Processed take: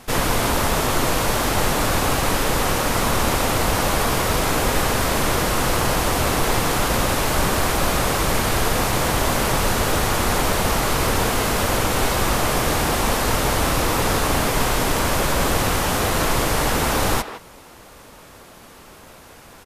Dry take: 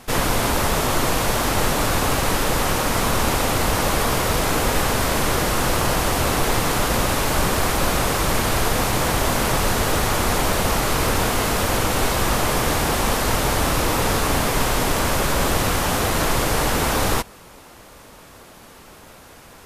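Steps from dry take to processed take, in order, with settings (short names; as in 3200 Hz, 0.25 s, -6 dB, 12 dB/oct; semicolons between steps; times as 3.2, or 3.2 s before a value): speakerphone echo 0.16 s, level -10 dB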